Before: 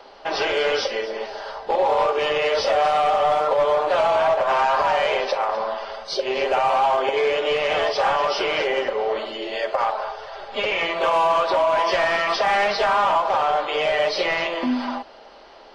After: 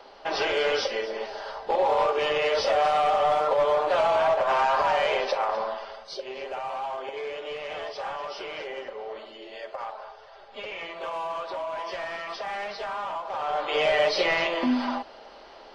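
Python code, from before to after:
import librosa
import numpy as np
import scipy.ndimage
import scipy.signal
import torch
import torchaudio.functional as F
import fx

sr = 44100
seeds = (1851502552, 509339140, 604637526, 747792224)

y = fx.gain(x, sr, db=fx.line((5.59, -3.5), (6.36, -13.5), (13.26, -13.5), (13.77, -1.5)))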